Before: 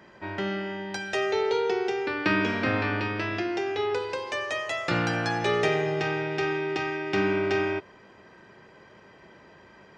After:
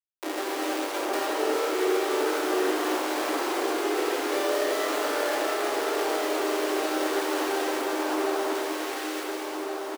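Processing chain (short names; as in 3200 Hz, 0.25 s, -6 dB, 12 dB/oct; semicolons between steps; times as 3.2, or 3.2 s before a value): bell 2400 Hz -13 dB 0.46 oct; doubler 22 ms -4 dB; Schmitt trigger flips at -32 dBFS; steep high-pass 280 Hz 96 dB/oct; hard clip -22 dBFS, distortion -25 dB; vocal rider; on a send: echo with dull and thin repeats by turns 0.71 s, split 1400 Hz, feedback 67%, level -2 dB; on the sum: limiter -24.5 dBFS, peak gain reduction 8.5 dB; non-linear reverb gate 0.46 s flat, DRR -2 dB; gain +2.5 dB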